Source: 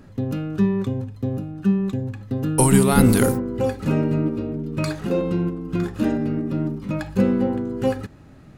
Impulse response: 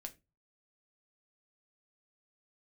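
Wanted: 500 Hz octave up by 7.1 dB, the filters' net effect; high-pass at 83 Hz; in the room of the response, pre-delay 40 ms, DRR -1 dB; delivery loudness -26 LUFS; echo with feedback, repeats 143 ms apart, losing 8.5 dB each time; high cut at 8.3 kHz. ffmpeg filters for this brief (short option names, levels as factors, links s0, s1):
-filter_complex "[0:a]highpass=83,lowpass=8300,equalizer=f=500:t=o:g=8.5,aecho=1:1:143|286|429|572:0.376|0.143|0.0543|0.0206,asplit=2[s0][s1];[1:a]atrim=start_sample=2205,adelay=40[s2];[s1][s2]afir=irnorm=-1:irlink=0,volume=1.88[s3];[s0][s3]amix=inputs=2:normalize=0,volume=0.266"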